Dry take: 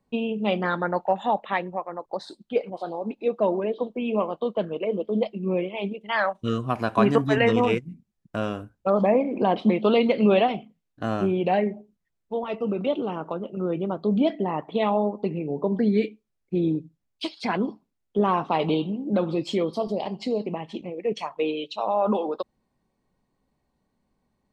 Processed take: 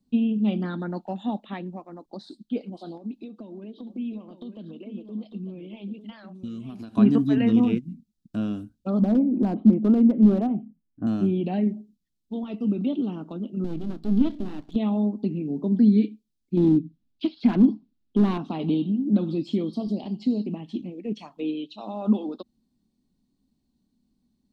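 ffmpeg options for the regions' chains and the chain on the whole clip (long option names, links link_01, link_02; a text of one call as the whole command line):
ffmpeg -i in.wav -filter_complex "[0:a]asettb=1/sr,asplit=3[link_01][link_02][link_03];[link_01]atrim=end=2.974[link_04];[link_02]atrim=start=2.97:end=6.96,asetpts=PTS-STARTPTS,afade=type=in:duration=0.004:curve=qsin,afade=type=out:start_time=3.986:duration=0.004:curve=qsin,acompressor=threshold=-33dB:ratio=8:attack=3.2:release=140:knee=1:detection=peak,aecho=1:1:900:0.316,atrim=end_sample=175959[link_05];[link_03]atrim=start=6.956[link_06];[link_04][link_05]acrossfade=duration=0.004:curve1=hsin:curve2=qsin[link_07];[link_07][link_06]acrossfade=duration=0.004:curve1=qsin:curve2=hsin,asettb=1/sr,asplit=3[link_08][link_09][link_10];[link_08]atrim=end=8.994[link_11];[link_09]atrim=start=8.99:end=11.07,asetpts=PTS-STARTPTS,afade=type=in:duration=0.004:curve=qsin,afade=type=out:start_time=2.076:duration=0.004:curve=qsin,lowpass=frequency=1400:width=0.5412,lowpass=frequency=1400:width=1.3066,lowshelf=frequency=140:gain=3.5,volume=14dB,asoftclip=hard,volume=-14dB[link_12];[link_10]atrim=start=11.066[link_13];[link_11][link_12]acrossfade=duration=0.004:curve1=hsin:curve2=qsin[link_14];[link_14][link_13]acrossfade=duration=0.004:curve1=qsin:curve2=hsin,asettb=1/sr,asplit=3[link_15][link_16][link_17];[link_15]atrim=end=13.644[link_18];[link_16]atrim=start=13.64:end=14.76,asetpts=PTS-STARTPTS,afade=type=in:duration=0.004:curve=qsin,afade=type=out:start_time=1.116:duration=0.004:curve=qsin,lowshelf=frequency=220:gain=6,aeval=exprs='max(val(0),0)':channel_layout=same[link_19];[link_17]atrim=start=14.756[link_20];[link_18][link_19]acrossfade=duration=0.004:curve1=hsin:curve2=qsin[link_21];[link_21][link_20]acrossfade=duration=0.004:curve1=qsin:curve2=hsin,asettb=1/sr,asplit=3[link_22][link_23][link_24];[link_22]atrim=end=16.574[link_25];[link_23]atrim=start=16.57:end=18.38,asetpts=PTS-STARTPTS,afade=type=in:duration=0.004:curve=qsin,afade=type=out:start_time=1.806:duration=0.004:curve=qsin,lowpass=2800,volume=21.5dB,asoftclip=hard,volume=-21.5dB,acontrast=57[link_26];[link_24]atrim=start=18.376[link_27];[link_25][link_26]acrossfade=duration=0.004:curve1=hsin:curve2=qsin[link_28];[link_28][link_27]acrossfade=duration=0.004:curve1=qsin:curve2=hsin,acrossover=split=2700[link_29][link_30];[link_30]acompressor=threshold=-54dB:ratio=4:attack=1:release=60[link_31];[link_29][link_31]amix=inputs=2:normalize=0,equalizer=frequency=125:width_type=o:width=1:gain=-4,equalizer=frequency=250:width_type=o:width=1:gain=11,equalizer=frequency=500:width_type=o:width=1:gain=-12,equalizer=frequency=1000:width_type=o:width=1:gain=-10,equalizer=frequency=2000:width_type=o:width=1:gain=-12,equalizer=frequency=4000:width_type=o:width=1:gain=6" out.wav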